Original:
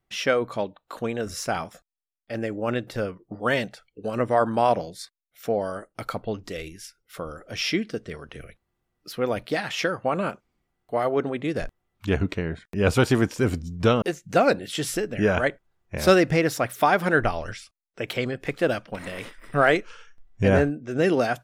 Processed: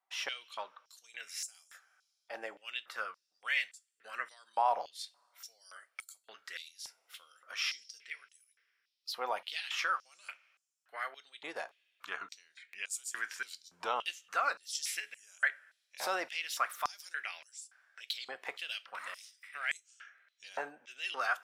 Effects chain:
brickwall limiter −15 dBFS, peak gain reduction 10 dB
convolution reverb, pre-delay 3 ms, DRR 13.5 dB
high-pass on a step sequencer 3.5 Hz 880–7,500 Hz
level −8.5 dB

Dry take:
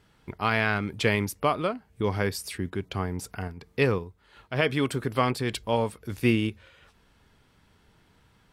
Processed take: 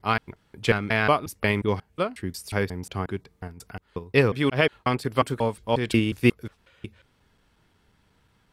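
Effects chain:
slices reordered back to front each 180 ms, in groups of 3
expander for the loud parts 1.5 to 1, over −34 dBFS
level +5 dB

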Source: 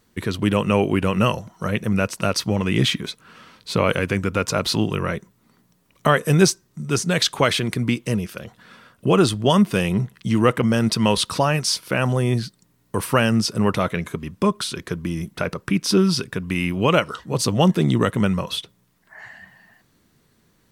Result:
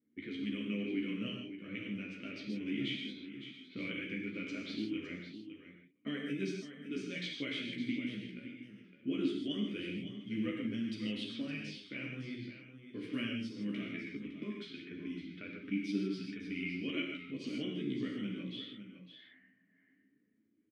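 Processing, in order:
multi-voice chorus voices 2, 0.19 Hz, delay 13 ms, depth 3.4 ms
reverb whose tail is shaped and stops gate 180 ms flat, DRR 0 dB
in parallel at +2 dB: downward compressor, threshold −30 dBFS, peak gain reduction 19.5 dB
on the sum: formant filter i
bass and treble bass −4 dB, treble −3 dB
low-pass that shuts in the quiet parts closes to 1,000 Hz, open at −30 dBFS
on a send: single-tap delay 560 ms −11 dB
on the sum: level −6.5 dB

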